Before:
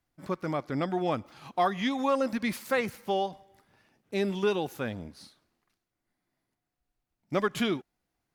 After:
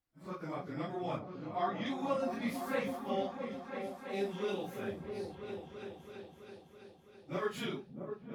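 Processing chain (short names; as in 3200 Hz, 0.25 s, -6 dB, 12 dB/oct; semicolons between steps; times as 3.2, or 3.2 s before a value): phase scrambler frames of 0.1 s; 1.19–1.86 air absorption 110 m; repeats that get brighter 0.33 s, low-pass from 200 Hz, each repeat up 2 oct, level -3 dB; on a send at -14 dB: reverb, pre-delay 45 ms; on the sum: gain -9 dB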